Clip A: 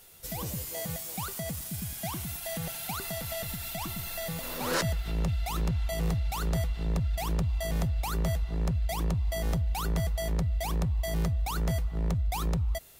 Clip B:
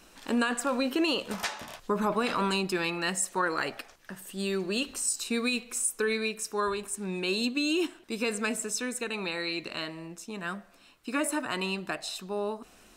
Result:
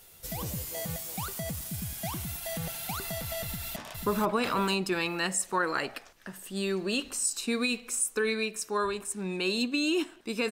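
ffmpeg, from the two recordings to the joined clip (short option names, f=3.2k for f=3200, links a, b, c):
-filter_complex "[0:a]apad=whole_dur=10.51,atrim=end=10.51,atrim=end=3.762[a];[1:a]atrim=start=1.588:end=8.34[b];[a][b]acrossfade=d=0.004:c1=hsin:c2=hsin,asplit=2[c][d];[d]afade=t=in:st=3.45:d=0.01,afade=t=out:st=3.76:d=0.01,aecho=0:1:490|980|1470|1960|2450:0.668344|0.23392|0.0818721|0.0286552|0.0100293[e];[c][e]amix=inputs=2:normalize=0"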